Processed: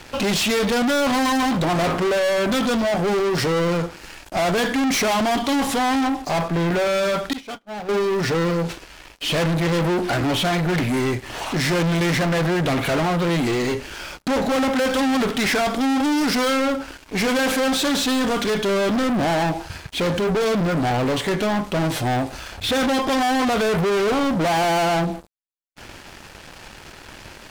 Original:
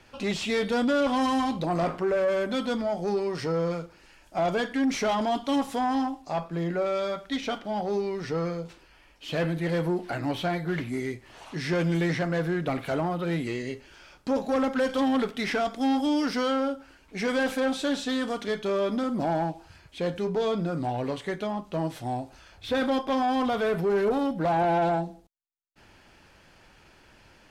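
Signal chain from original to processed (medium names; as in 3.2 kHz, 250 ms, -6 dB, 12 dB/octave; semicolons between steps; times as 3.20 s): waveshaping leveller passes 5; 7.33–7.89 s: gate -20 dBFS, range -39 dB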